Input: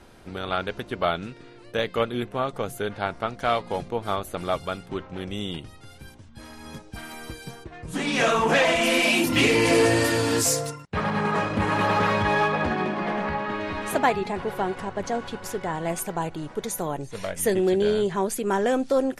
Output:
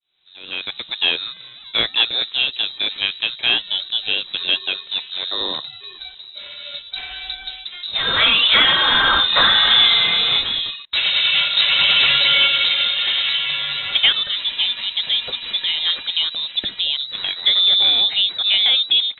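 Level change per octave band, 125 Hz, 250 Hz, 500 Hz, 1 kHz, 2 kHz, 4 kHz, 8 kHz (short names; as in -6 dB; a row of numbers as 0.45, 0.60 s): -11.0 dB, -13.0 dB, -11.5 dB, -1.5 dB, +7.0 dB, +20.0 dB, under -40 dB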